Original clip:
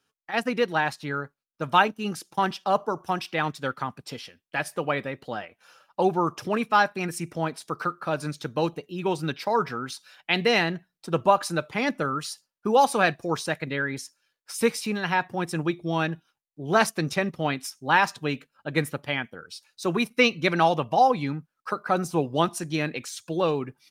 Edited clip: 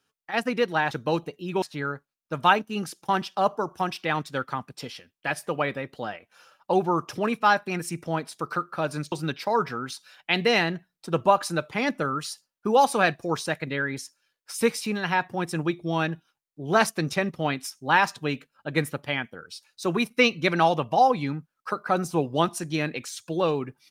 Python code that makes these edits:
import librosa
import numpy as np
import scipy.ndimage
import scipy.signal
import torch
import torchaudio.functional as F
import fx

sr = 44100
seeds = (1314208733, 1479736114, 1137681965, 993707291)

y = fx.edit(x, sr, fx.move(start_s=8.41, length_s=0.71, to_s=0.91), tone=tone)